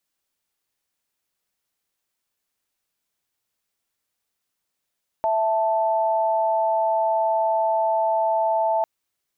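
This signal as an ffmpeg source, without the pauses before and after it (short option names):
-f lavfi -i "aevalsrc='0.0891*(sin(2*PI*659.26*t)+sin(2*PI*880*t))':d=3.6:s=44100"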